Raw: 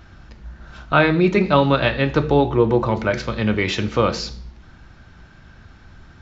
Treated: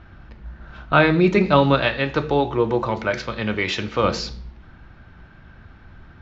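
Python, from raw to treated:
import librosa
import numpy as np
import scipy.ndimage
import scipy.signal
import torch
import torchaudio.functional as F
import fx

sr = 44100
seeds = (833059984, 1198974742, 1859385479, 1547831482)

y = fx.low_shelf(x, sr, hz=410.0, db=-7.0, at=(1.81, 4.04))
y = fx.env_lowpass(y, sr, base_hz=2700.0, full_db=-14.0)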